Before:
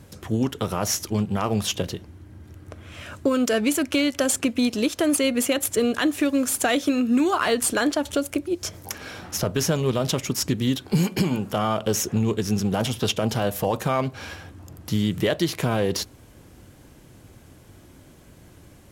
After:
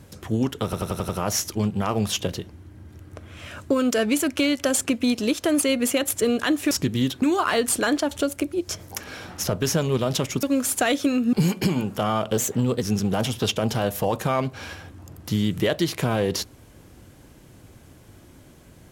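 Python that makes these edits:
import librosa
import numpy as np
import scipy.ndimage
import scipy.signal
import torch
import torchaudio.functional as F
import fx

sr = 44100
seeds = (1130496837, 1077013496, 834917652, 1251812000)

y = fx.edit(x, sr, fx.stutter(start_s=0.64, slice_s=0.09, count=6),
    fx.swap(start_s=6.26, length_s=0.9, other_s=10.37, other_length_s=0.51),
    fx.speed_span(start_s=11.92, length_s=0.51, speed=1.12), tone=tone)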